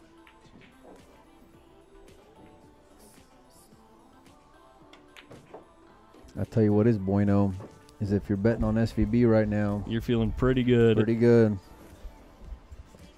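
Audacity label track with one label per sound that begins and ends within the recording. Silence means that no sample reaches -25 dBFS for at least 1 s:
6.390000	11.530000	sound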